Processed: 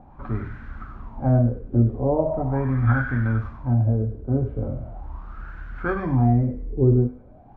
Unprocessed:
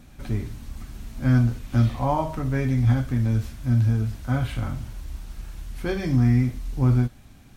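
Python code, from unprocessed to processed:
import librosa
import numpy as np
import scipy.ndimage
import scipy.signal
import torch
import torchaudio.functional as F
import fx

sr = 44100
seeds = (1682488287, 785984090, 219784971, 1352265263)

y = fx.hum_notches(x, sr, base_hz=50, count=5)
y = fx.echo_wet_highpass(y, sr, ms=98, feedback_pct=55, hz=1500.0, wet_db=-5.5)
y = fx.filter_lfo_lowpass(y, sr, shape='sine', hz=0.4, low_hz=410.0, high_hz=1500.0, q=7.7)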